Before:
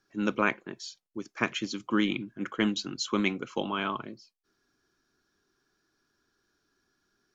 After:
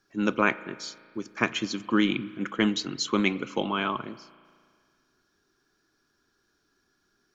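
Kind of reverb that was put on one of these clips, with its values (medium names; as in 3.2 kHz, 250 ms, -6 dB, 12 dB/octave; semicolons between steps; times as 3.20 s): spring tank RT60 2 s, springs 35 ms, chirp 30 ms, DRR 17 dB; trim +3 dB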